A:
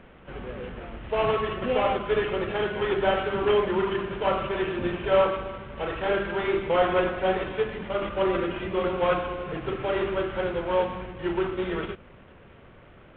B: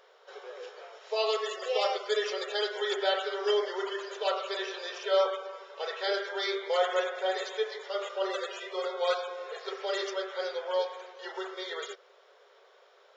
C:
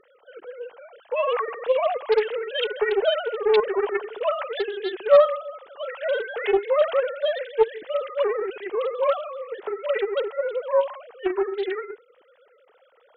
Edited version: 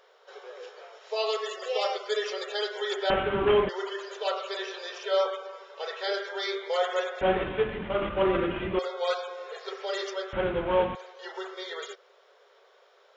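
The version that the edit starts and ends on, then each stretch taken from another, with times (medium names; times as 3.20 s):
B
3.10–3.69 s: from A
7.21–8.79 s: from A
10.33–10.95 s: from A
not used: C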